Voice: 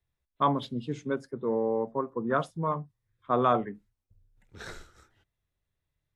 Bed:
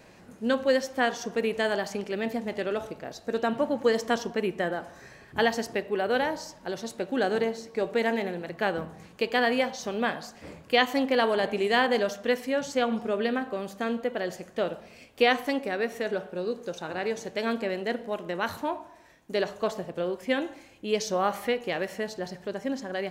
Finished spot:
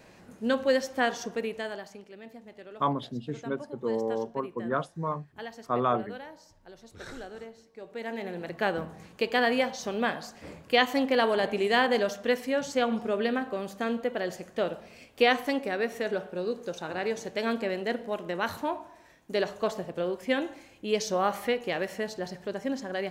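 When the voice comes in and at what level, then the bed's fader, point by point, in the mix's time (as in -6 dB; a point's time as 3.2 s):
2.40 s, -2.0 dB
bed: 1.21 s -1 dB
2.12 s -16.5 dB
7.8 s -16.5 dB
8.44 s -0.5 dB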